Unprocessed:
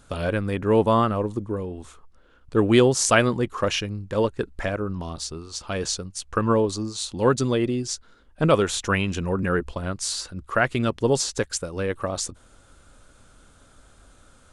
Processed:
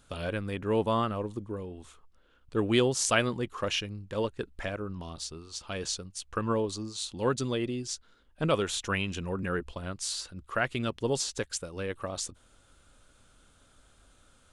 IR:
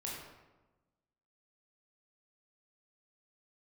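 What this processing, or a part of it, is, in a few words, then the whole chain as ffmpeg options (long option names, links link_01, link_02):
presence and air boost: -af "equalizer=frequency=3100:width_type=o:width=1:gain=5,highshelf=frequency=9200:gain=4.5,volume=-8.5dB"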